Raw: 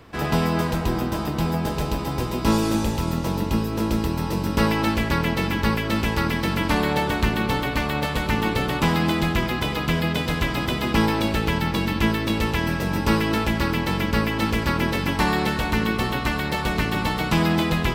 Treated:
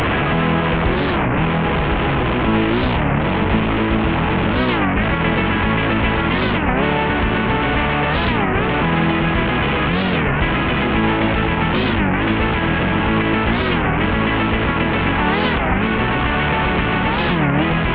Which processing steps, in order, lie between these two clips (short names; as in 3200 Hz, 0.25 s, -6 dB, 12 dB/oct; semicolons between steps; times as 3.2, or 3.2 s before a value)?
delta modulation 16 kbps, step -17 dBFS; limiter -14 dBFS, peak gain reduction 6 dB; record warp 33 1/3 rpm, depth 250 cents; gain +6 dB